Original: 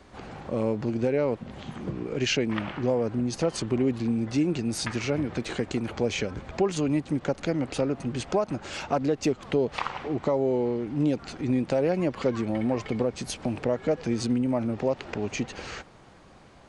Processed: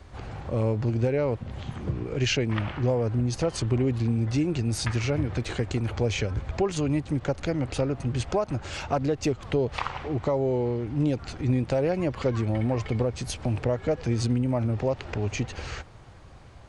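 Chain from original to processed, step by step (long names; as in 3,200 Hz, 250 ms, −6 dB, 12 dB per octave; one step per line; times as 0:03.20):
low shelf with overshoot 140 Hz +9 dB, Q 1.5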